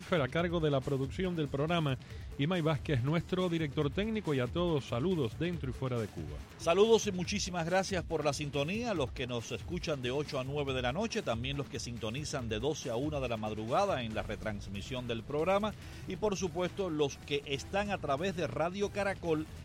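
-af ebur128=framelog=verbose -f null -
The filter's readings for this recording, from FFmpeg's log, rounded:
Integrated loudness:
  I:         -34.0 LUFS
  Threshold: -44.0 LUFS
Loudness range:
  LRA:         3.5 LU
  Threshold: -54.1 LUFS
  LRA low:   -35.6 LUFS
  LRA high:  -32.2 LUFS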